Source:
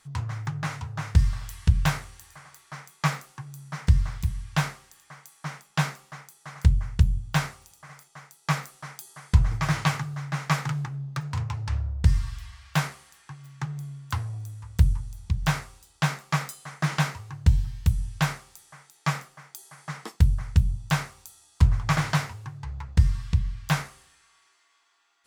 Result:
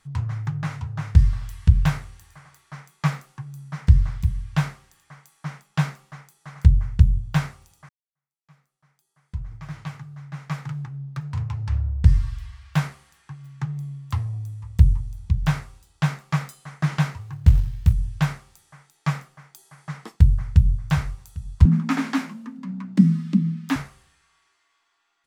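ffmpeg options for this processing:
-filter_complex "[0:a]asettb=1/sr,asplit=3[a][b][c];[a]atrim=end=13.714[d];[b]atrim=start=13.71:end=15.13,asetpts=PTS-STARTPTS,afade=t=in:d=0.004:c=qsin,afade=t=out:st=1.416:d=0.004:c=qsin,bandreject=f=1.5k:w=6.4[e];[c]atrim=start=15.126[f];[d][e]acrossfade=d=0.004:c1=hsin:c2=qsin[g];[g][f]acrossfade=d=0.004:c1=qsin:c2=hsin,asettb=1/sr,asplit=3[h][i][j];[h]atrim=end=17.214[k];[i]atrim=start=17.21:end=17.93,asetpts=PTS-STARTPTS,afade=t=in:d=0.004:c=qsin,afade=t=out:st=0.716:d=0.004:c=qsin,acrusher=bits=6:mode=log:mix=0:aa=0.000001[l];[j]atrim=start=17.926[m];[k][l]acrossfade=d=0.004:c1=hsin:c2=qsin[n];[n][m]acrossfade=d=0.004:c1=qsin:c2=hsin,asplit=2[o][p];[p]afade=t=in:st=20.25:d=0.01,afade=t=out:st=20.75:d=0.01,aecho=0:1:400|800|1200|1600|2000|2400:0.211349|0.116242|0.063933|0.0351632|0.0193397|0.0106369[q];[o][q]amix=inputs=2:normalize=0,asettb=1/sr,asplit=3[r][s][t];[r]atrim=end=21.654[u];[s]atrim=start=21.65:end=23.76,asetpts=PTS-STARTPTS,afade=t=in:d=0.004:c=qsin,afade=t=out:st=2.106:d=0.004:c=qsin,afreqshift=120[v];[t]atrim=start=23.756[w];[u][v]acrossfade=d=0.004:c1=hsin:c2=qsin[x];[x][w]acrossfade=d=0.004:c1=qsin:c2=hsin,asplit=2[y][z];[y]atrim=end=7.89,asetpts=PTS-STARTPTS,afade=t=out:st=7.886:d=0.004:c=hsin[aa];[z]atrim=start=7.89,asetpts=PTS-STARTPTS,afade=t=in:d=4.01:c=qua[ab];[aa][ab]concat=n=2:v=0:a=1,bass=f=250:g=7,treble=f=4k:g=-4,volume=-2dB"

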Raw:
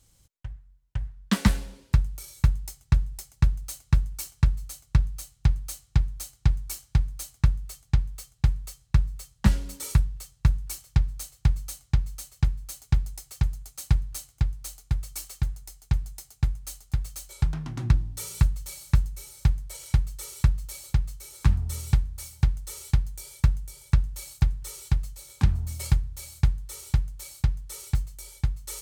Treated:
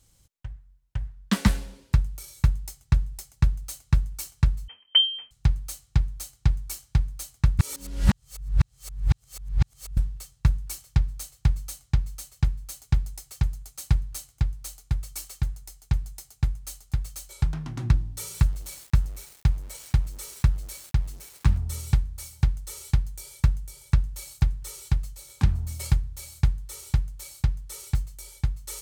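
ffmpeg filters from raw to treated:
-filter_complex "[0:a]asettb=1/sr,asplit=3[a][b][c];[a]atrim=end=4.684[d];[b]atrim=start=4.68:end=5.31,asetpts=PTS-STARTPTS,afade=t=in:d=0.004:c=qsin,afade=t=out:st=0.626:d=0.004:c=qsin,lowpass=f=2.7k:t=q:w=0.5098,lowpass=f=2.7k:t=q:w=0.6013,lowpass=f=2.7k:t=q:w=0.9,lowpass=f=2.7k:t=q:w=2.563,afreqshift=-3200[e];[c]atrim=start=5.306[f];[d][e]acrossfade=d=0.004:c1=hsin:c2=qsin[g];[g][f]acrossfade=d=0.004:c1=qsin:c2=hsin,asettb=1/sr,asplit=3[h][i][j];[h]atrim=end=18.344[k];[i]atrim=start=18.34:end=21.58,asetpts=PTS-STARTPTS,afade=t=in:d=0.004:c=qsin,afade=t=out:st=3.236:d=0.004:c=qsin,aeval=exprs='val(0)*gte(abs(val(0)),0.00708)':c=same[l];[j]atrim=start=21.576[m];[k][l]acrossfade=d=0.004:c1=hsin:c2=qsin[n];[n][m]acrossfade=d=0.004:c1=qsin:c2=hsin,asplit=3[o][p][q];[o]atrim=end=7.592[r];[p]atrim=start=7.588:end=9.972,asetpts=PTS-STARTPTS,areverse[s];[q]atrim=start=9.968[t];[r][s]acrossfade=d=0.004:c1=hsin:c2=hsin[u];[u][t]acrossfade=d=0.004:c1=hsin:c2=hsin"

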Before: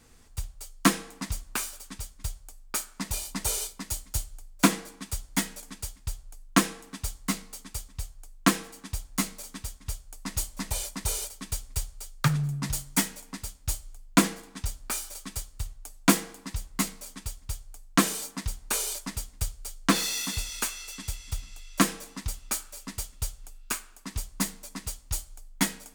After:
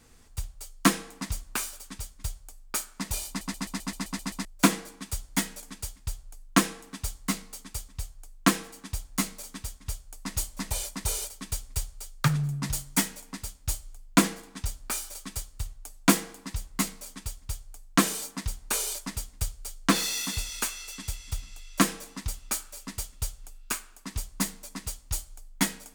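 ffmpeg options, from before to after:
-filter_complex "[0:a]asplit=10[a][b][c][d][e][f][g][h][i][j];[a]atrim=end=3.412[k];[b]atrim=start=3.278:end=3.412[l];[c]atrim=start=3.278:end=3.412[m];[d]atrim=start=3.278:end=3.412[n];[e]atrim=start=3.278:end=3.412[o];[f]atrim=start=3.278:end=3.412[p];[g]atrim=start=3.278:end=3.412[q];[h]atrim=start=3.278:end=3.412[r];[i]atrim=start=3.278:end=3.412[s];[j]atrim=start=4.448[t];[k][l]acrossfade=d=0.004:c1=hsin:c2=hsin[u];[u][m]acrossfade=d=0.004:c1=hsin:c2=hsin[v];[v][n]acrossfade=d=0.004:c1=hsin:c2=hsin[w];[w][o]acrossfade=d=0.004:c1=hsin:c2=hsin[x];[x][p]acrossfade=d=0.004:c1=hsin:c2=hsin[y];[y][q]acrossfade=d=0.004:c1=hsin:c2=hsin[z];[z][r]acrossfade=d=0.004:c1=hsin:c2=hsin[aa];[aa][s]acrossfade=d=0.004:c1=hsin:c2=hsin[ab];[ab][t]acrossfade=d=0.004:c1=hsin:c2=hsin"

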